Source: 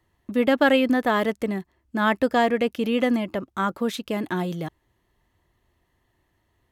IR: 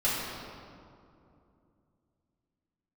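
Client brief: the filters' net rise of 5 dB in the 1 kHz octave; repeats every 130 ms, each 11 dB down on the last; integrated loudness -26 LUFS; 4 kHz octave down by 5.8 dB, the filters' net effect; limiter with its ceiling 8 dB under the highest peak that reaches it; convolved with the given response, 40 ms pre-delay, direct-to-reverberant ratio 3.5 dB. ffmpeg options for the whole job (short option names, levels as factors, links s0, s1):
-filter_complex "[0:a]equalizer=f=1000:t=o:g=7,equalizer=f=4000:t=o:g=-9,alimiter=limit=0.266:level=0:latency=1,aecho=1:1:130|260|390:0.282|0.0789|0.0221,asplit=2[s0][s1];[1:a]atrim=start_sample=2205,adelay=40[s2];[s1][s2]afir=irnorm=-1:irlink=0,volume=0.188[s3];[s0][s3]amix=inputs=2:normalize=0,volume=0.596"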